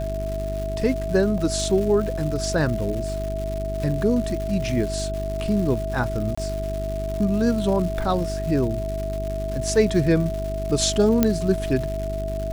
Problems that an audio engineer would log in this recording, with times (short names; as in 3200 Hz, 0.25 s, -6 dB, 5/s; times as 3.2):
crackle 300/s -30 dBFS
hum 50 Hz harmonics 8 -29 dBFS
tone 650 Hz -28 dBFS
1.38 gap 4.3 ms
6.35–6.38 gap 25 ms
11.23 pop -4 dBFS